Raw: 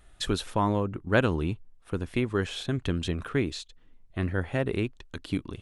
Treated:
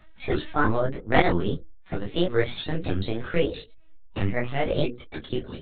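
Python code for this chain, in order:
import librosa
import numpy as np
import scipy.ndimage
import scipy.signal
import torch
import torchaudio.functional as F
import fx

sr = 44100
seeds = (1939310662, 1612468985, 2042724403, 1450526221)

y = fx.pitch_ramps(x, sr, semitones=7.0, every_ms=322)
y = fx.hum_notches(y, sr, base_hz=60, count=9)
y = fx.lpc_vocoder(y, sr, seeds[0], excitation='pitch_kept', order=16)
y = fx.detune_double(y, sr, cents=29)
y = F.gain(torch.from_numpy(y), 8.5).numpy()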